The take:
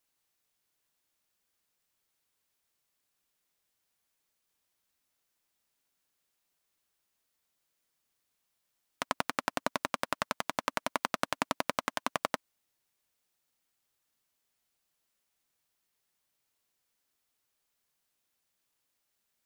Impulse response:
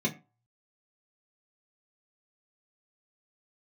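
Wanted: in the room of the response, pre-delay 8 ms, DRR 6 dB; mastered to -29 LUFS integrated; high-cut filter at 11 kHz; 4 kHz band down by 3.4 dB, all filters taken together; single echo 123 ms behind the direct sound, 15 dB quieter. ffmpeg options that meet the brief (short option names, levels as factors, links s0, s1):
-filter_complex "[0:a]lowpass=11000,equalizer=f=4000:t=o:g=-4.5,aecho=1:1:123:0.178,asplit=2[s0][s1];[1:a]atrim=start_sample=2205,adelay=8[s2];[s1][s2]afir=irnorm=-1:irlink=0,volume=0.211[s3];[s0][s3]amix=inputs=2:normalize=0,volume=1.78"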